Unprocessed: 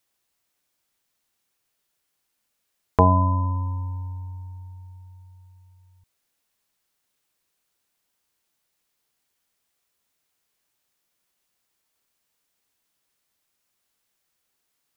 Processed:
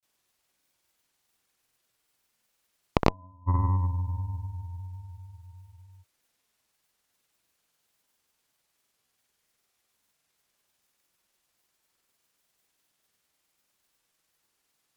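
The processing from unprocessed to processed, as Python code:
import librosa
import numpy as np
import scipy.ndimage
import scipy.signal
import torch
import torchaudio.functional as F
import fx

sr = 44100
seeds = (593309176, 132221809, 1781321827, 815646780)

y = fx.gate_flip(x, sr, shuts_db=-17.0, range_db=-34)
y = fx.granulator(y, sr, seeds[0], grain_ms=100.0, per_s=20.0, spray_ms=100.0, spread_st=0)
y = fx.cheby_harmonics(y, sr, harmonics=(6,), levels_db=(-16,), full_scale_db=-5.5)
y = y * 10.0 ** (3.5 / 20.0)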